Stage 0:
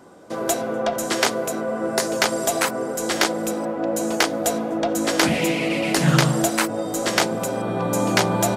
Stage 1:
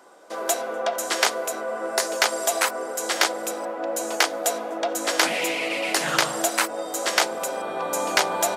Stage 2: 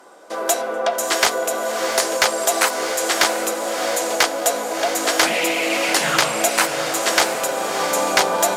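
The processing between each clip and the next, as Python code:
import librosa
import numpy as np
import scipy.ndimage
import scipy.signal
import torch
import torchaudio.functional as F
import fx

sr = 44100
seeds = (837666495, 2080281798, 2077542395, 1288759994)

y1 = scipy.signal.sosfilt(scipy.signal.butter(2, 560.0, 'highpass', fs=sr, output='sos'), x)
y2 = fx.cheby_harmonics(y1, sr, harmonics=(5,), levels_db=(-16,), full_scale_db=-1.0)
y2 = fx.echo_diffused(y2, sr, ms=693, feedback_pct=41, wet_db=-7.0)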